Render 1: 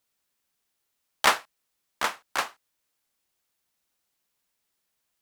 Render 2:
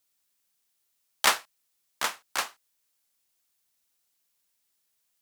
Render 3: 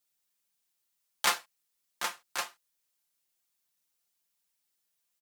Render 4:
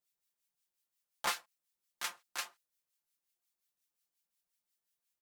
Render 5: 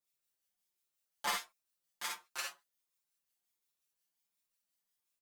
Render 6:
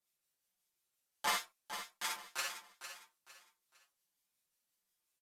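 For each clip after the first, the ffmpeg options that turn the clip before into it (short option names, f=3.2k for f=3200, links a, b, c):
-af "highshelf=f=3.1k:g=9,volume=-4.5dB"
-af "aecho=1:1:5.7:0.65,volume=-6dB"
-filter_complex "[0:a]acrossover=split=1400[a][b];[a]aeval=exprs='val(0)*(1-0.7/2+0.7/2*cos(2*PI*5.6*n/s))':c=same[c];[b]aeval=exprs='val(0)*(1-0.7/2-0.7/2*cos(2*PI*5.6*n/s))':c=same[d];[c][d]amix=inputs=2:normalize=0,volume=-3dB"
-filter_complex "[0:a]aecho=1:1:52|63:0.562|0.473,asplit=2[a][b];[b]adelay=6.2,afreqshift=1.4[c];[a][c]amix=inputs=2:normalize=1,volume=1dB"
-af "aecho=1:1:455|910|1365:0.316|0.098|0.0304,volume=1.5dB" -ar 32000 -c:a aac -b:a 64k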